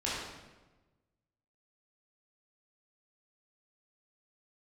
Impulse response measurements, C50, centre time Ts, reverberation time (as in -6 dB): -1.5 dB, 85 ms, 1.2 s